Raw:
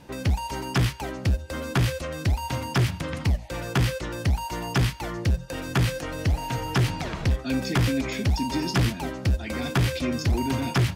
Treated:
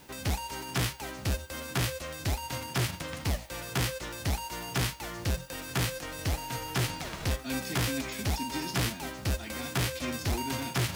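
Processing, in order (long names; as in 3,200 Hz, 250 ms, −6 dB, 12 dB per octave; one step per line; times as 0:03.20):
spectral envelope flattened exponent 0.6
reversed playback
upward compression, threshold −27 dBFS
reversed playback
background noise violet −56 dBFS
echo ahead of the sound 73 ms −22.5 dB
level −7.5 dB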